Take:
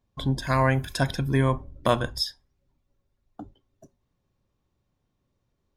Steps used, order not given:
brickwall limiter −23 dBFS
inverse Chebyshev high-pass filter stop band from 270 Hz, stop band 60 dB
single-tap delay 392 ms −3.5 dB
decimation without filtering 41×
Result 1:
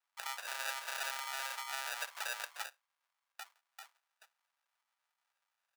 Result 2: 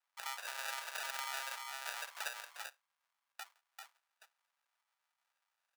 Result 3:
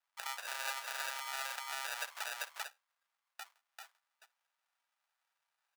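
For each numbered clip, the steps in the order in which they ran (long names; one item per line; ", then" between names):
single-tap delay, then decimation without filtering, then brickwall limiter, then inverse Chebyshev high-pass filter
brickwall limiter, then single-tap delay, then decimation without filtering, then inverse Chebyshev high-pass filter
decimation without filtering, then single-tap delay, then brickwall limiter, then inverse Chebyshev high-pass filter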